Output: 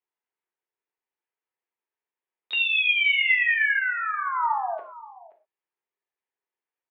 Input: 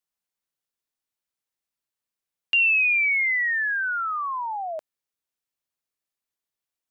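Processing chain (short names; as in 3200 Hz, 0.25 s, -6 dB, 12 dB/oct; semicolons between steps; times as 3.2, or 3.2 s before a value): speaker cabinet 380–2300 Hz, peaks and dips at 390 Hz +8 dB, 620 Hz -6 dB, 890 Hz +5 dB, 1300 Hz -5 dB; on a send: echo 0.526 s -18.5 dB; on the sum: harmoniser +5 st -8 dB; non-linear reverb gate 0.15 s falling, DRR 2 dB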